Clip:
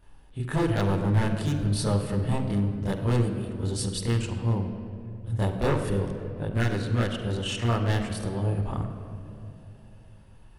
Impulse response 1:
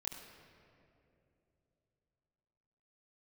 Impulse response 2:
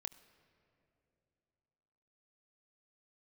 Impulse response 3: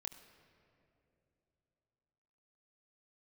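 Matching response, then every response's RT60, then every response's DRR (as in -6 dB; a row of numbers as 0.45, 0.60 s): 1; 2.8, 2.9, 2.9 s; -6.0, 8.5, 2.5 dB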